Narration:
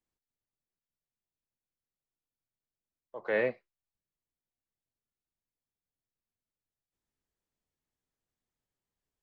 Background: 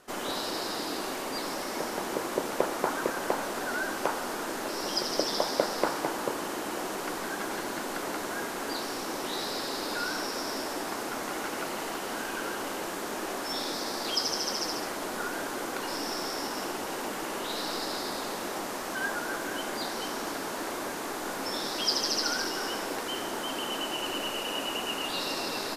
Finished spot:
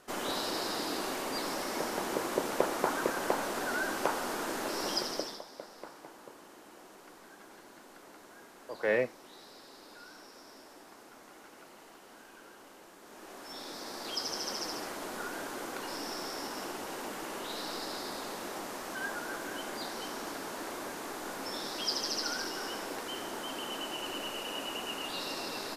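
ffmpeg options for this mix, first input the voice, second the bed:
ffmpeg -i stem1.wav -i stem2.wav -filter_complex "[0:a]adelay=5550,volume=0.5dB[link_01];[1:a]volume=12.5dB,afade=type=out:start_time=4.89:duration=0.53:silence=0.125893,afade=type=in:start_time=13:duration=1.47:silence=0.199526[link_02];[link_01][link_02]amix=inputs=2:normalize=0" out.wav

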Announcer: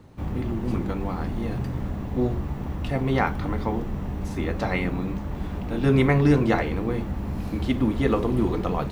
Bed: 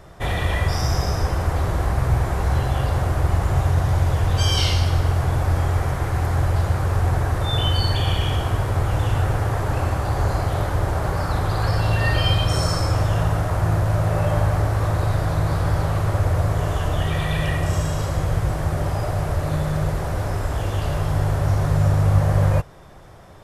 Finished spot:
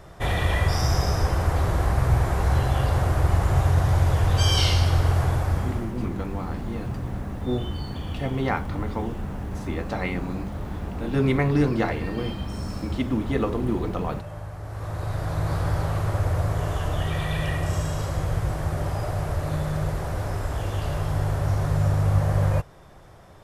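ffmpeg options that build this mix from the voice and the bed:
ffmpeg -i stem1.wav -i stem2.wav -filter_complex "[0:a]adelay=5300,volume=-2.5dB[link_01];[1:a]volume=12dB,afade=type=out:start_time=5.21:duration=0.73:silence=0.158489,afade=type=in:start_time=14.6:duration=0.94:silence=0.223872[link_02];[link_01][link_02]amix=inputs=2:normalize=0" out.wav

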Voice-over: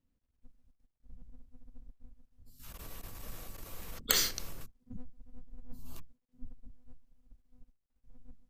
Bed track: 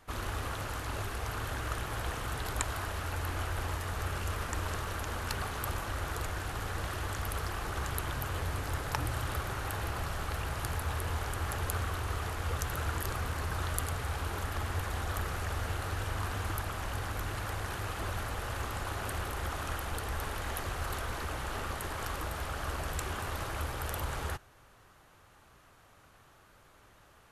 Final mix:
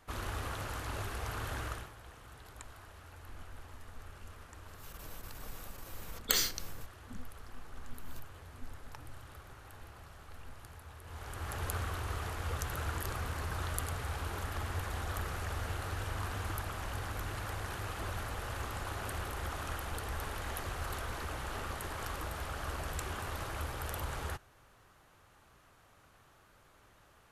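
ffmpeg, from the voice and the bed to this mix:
ffmpeg -i stem1.wav -i stem2.wav -filter_complex "[0:a]adelay=2200,volume=-1.5dB[link_01];[1:a]volume=11.5dB,afade=type=out:start_time=1.62:duration=0.31:silence=0.188365,afade=type=in:start_time=11.03:duration=0.63:silence=0.199526[link_02];[link_01][link_02]amix=inputs=2:normalize=0" out.wav

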